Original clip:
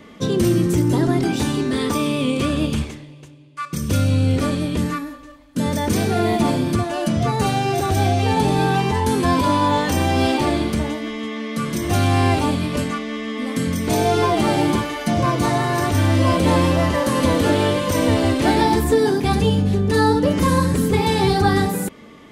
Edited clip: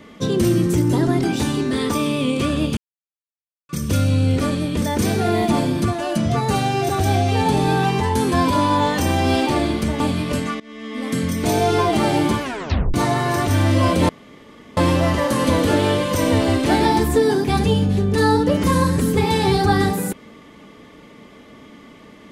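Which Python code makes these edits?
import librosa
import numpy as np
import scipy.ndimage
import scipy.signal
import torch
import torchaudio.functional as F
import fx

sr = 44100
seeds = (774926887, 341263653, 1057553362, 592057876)

y = fx.edit(x, sr, fx.silence(start_s=2.77, length_s=0.92),
    fx.cut(start_s=4.82, length_s=0.91),
    fx.cut(start_s=10.91, length_s=1.53),
    fx.fade_in_from(start_s=13.04, length_s=0.49, floor_db=-21.5),
    fx.tape_stop(start_s=14.86, length_s=0.52),
    fx.insert_room_tone(at_s=16.53, length_s=0.68), tone=tone)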